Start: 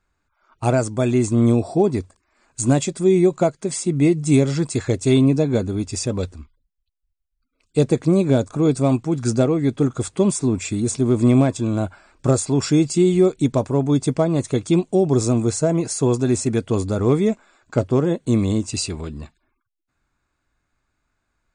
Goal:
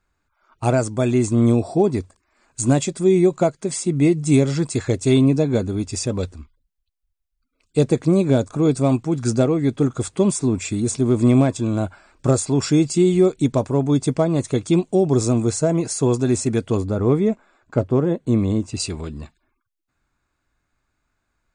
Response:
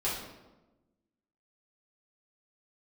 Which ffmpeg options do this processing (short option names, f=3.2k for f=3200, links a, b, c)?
-filter_complex "[0:a]asettb=1/sr,asplit=3[a][b][c];[a]atrim=end=16.774[d];[b]atrim=start=16.77:end=18.8,asetpts=PTS-STARTPTS,afade=t=in:d=0.004:c=qsin,afade=t=out:st=2.026:d=0.004:c=qsin,highshelf=f=2.9k:g=-11.5[e];[c]atrim=start=18.796[f];[d][e]acrossfade=d=0.004:c1=hsin:c2=qsin[g];[g][f]acrossfade=d=0.004:c1=qsin:c2=hsin"